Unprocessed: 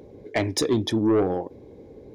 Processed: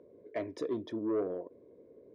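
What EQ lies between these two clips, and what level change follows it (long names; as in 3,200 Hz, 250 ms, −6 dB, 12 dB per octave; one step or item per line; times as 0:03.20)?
resonant band-pass 600 Hz, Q 0.83
Butterworth band-reject 810 Hz, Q 3.8
−9.0 dB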